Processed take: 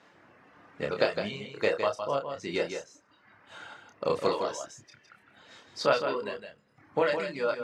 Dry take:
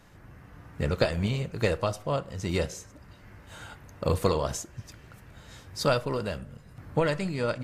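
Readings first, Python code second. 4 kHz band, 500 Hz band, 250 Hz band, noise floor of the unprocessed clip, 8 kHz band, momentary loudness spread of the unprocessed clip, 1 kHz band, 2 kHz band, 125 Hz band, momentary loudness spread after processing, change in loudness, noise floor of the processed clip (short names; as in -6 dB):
-1.0 dB, +0.5 dB, -6.0 dB, -53 dBFS, -6.5 dB, 19 LU, +1.0 dB, +1.0 dB, -15.5 dB, 18 LU, -1.5 dB, -63 dBFS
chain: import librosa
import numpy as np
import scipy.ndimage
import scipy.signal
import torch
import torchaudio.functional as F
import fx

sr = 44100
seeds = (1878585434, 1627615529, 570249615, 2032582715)

y = scipy.signal.sosfilt(scipy.signal.butter(2, 4700.0, 'lowpass', fs=sr, output='sos'), x)
y = fx.dereverb_blind(y, sr, rt60_s=1.6)
y = scipy.signal.sosfilt(scipy.signal.butter(2, 320.0, 'highpass', fs=sr, output='sos'), y)
y = fx.doubler(y, sr, ms=29.0, db=-5)
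y = y + 10.0 ** (-7.5 / 20.0) * np.pad(y, (int(160 * sr / 1000.0), 0))[:len(y)]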